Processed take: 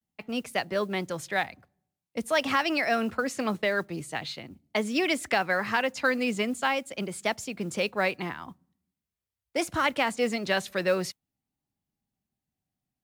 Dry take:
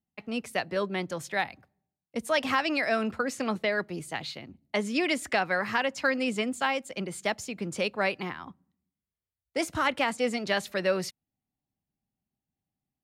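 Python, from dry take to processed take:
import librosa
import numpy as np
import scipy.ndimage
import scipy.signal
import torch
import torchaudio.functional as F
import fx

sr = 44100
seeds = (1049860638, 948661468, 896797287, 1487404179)

y = fx.vibrato(x, sr, rate_hz=0.45, depth_cents=61.0)
y = fx.mod_noise(y, sr, seeds[0], snr_db=31)
y = y * 10.0 ** (1.0 / 20.0)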